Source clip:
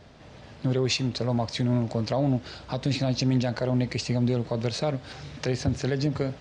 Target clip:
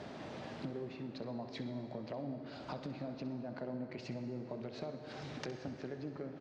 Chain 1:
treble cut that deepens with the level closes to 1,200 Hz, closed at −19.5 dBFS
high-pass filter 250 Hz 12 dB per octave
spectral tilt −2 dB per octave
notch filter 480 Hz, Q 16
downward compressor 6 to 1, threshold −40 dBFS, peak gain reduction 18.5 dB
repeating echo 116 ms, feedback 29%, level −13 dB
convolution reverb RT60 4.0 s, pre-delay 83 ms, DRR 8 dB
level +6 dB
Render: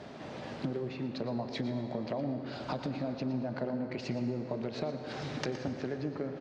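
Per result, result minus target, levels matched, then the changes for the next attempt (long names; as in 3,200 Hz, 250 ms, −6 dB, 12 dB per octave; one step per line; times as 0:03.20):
echo 52 ms late; downward compressor: peak gain reduction −7.5 dB
change: repeating echo 64 ms, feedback 29%, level −13 dB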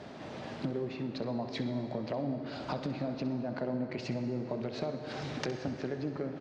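downward compressor: peak gain reduction −7.5 dB
change: downward compressor 6 to 1, threshold −49 dBFS, peak gain reduction 26 dB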